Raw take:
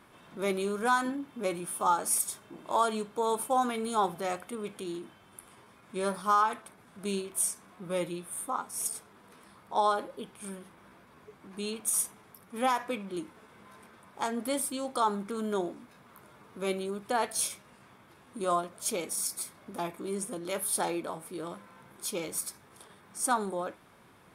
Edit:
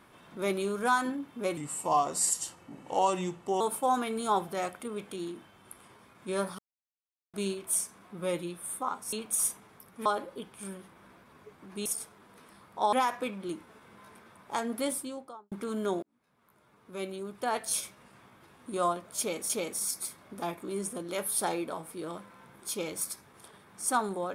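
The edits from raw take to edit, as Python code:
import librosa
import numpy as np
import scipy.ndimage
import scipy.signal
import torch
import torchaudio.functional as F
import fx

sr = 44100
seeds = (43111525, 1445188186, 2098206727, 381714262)

y = fx.studio_fade_out(x, sr, start_s=14.51, length_s=0.68)
y = fx.edit(y, sr, fx.speed_span(start_s=1.57, length_s=1.71, speed=0.84),
    fx.silence(start_s=6.26, length_s=0.75),
    fx.swap(start_s=8.8, length_s=1.07, other_s=11.67, other_length_s=0.93),
    fx.fade_in_span(start_s=15.7, length_s=1.83),
    fx.repeat(start_s=18.86, length_s=0.31, count=2), tone=tone)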